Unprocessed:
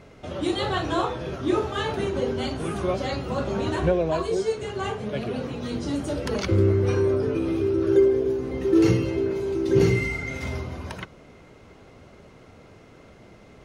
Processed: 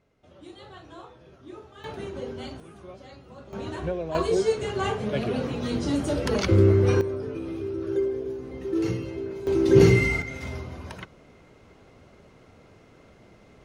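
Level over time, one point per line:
−20 dB
from 0:01.84 −9 dB
from 0:02.60 −18.5 dB
from 0:03.53 −8 dB
from 0:04.15 +2 dB
from 0:07.01 −8 dB
from 0:09.47 +3.5 dB
from 0:10.22 −4 dB

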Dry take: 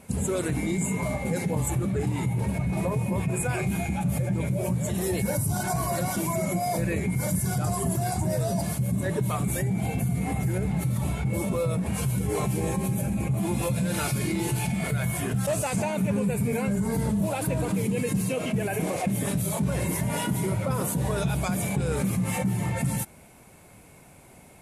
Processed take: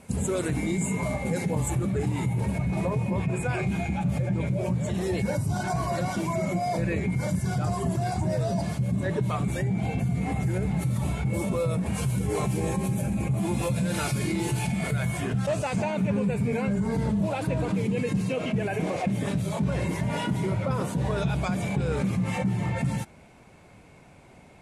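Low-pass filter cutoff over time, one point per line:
0:02.51 9,700 Hz
0:03.12 5,400 Hz
0:10.01 5,400 Hz
0:10.82 9,300 Hz
0:14.96 9,300 Hz
0:15.38 5,100 Hz

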